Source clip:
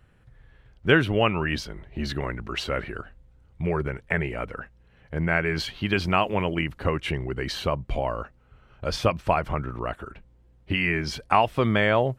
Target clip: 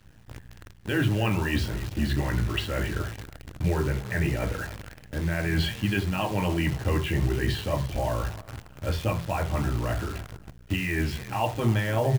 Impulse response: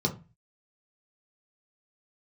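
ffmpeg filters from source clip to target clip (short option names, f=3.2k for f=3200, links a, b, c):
-filter_complex "[0:a]equalizer=f=125:t=o:w=1:g=-9,equalizer=f=250:t=o:w=1:g=-7,equalizer=f=500:t=o:w=1:g=-5,equalizer=f=2k:t=o:w=1:g=4,equalizer=f=4k:t=o:w=1:g=-11,areverse,acompressor=threshold=-35dB:ratio=4,areverse,asplit=4[a][b][c][d];[b]adelay=283,afreqshift=40,volume=-17dB[e];[c]adelay=566,afreqshift=80,volume=-27.5dB[f];[d]adelay=849,afreqshift=120,volume=-37.9dB[g];[a][e][f][g]amix=inputs=4:normalize=0[h];[1:a]atrim=start_sample=2205,afade=t=out:st=0.14:d=0.01,atrim=end_sample=6615,asetrate=33075,aresample=44100[i];[h][i]afir=irnorm=-1:irlink=0,acrusher=bits=7:dc=4:mix=0:aa=0.000001,volume=-2dB"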